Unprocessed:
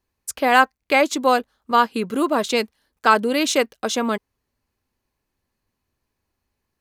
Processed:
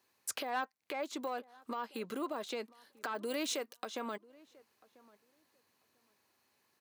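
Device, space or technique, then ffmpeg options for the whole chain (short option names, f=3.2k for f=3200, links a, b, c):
broadcast voice chain: -filter_complex "[0:a]highpass=f=91:w=0.5412,highpass=f=91:w=1.3066,deesser=0.85,acompressor=threshold=-32dB:ratio=5,equalizer=f=4k:t=o:w=0.21:g=2.5,alimiter=level_in=7dB:limit=-24dB:level=0:latency=1:release=390,volume=-7dB,highpass=f=550:p=1,asettb=1/sr,asplit=3[a][b][c];[a]atrim=end=3.254[d];[b]atrim=start=3.25:end=3.78,asetpts=PTS-STARTPTS,afade=t=in:d=0.004:c=qsin,afade=t=out:st=0.526:d=0.004:c=qsin,highshelf=f=5.9k:g=10[e];[c]atrim=start=3.776[f];[d][e]acrossfade=d=0.004:c1=hsin:c2=qsin[g];[g][f]acrossfade=d=0.004:c1=qsin:c2=hsin,asplit=2[h][i];[i]adelay=992,lowpass=f=1.5k:p=1,volume=-22.5dB,asplit=2[j][k];[k]adelay=992,lowpass=f=1.5k:p=1,volume=0.18[l];[h][j][l]amix=inputs=3:normalize=0,volume=6dB"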